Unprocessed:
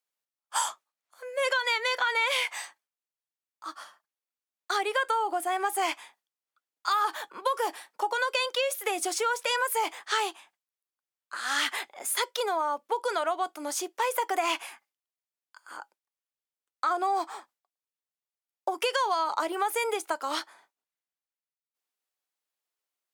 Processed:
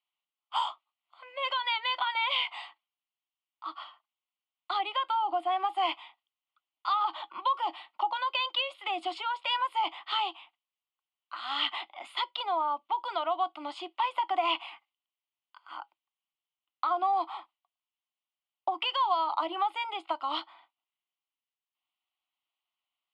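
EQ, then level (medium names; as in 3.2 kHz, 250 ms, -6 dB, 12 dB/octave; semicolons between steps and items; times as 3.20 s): dynamic bell 2.2 kHz, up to -7 dB, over -41 dBFS, Q 0.78; cabinet simulation 290–4900 Hz, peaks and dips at 330 Hz +7 dB, 720 Hz +4 dB, 1.1 kHz +4 dB, 1.9 kHz +8 dB, 3 kHz +9 dB; static phaser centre 1.7 kHz, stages 6; 0.0 dB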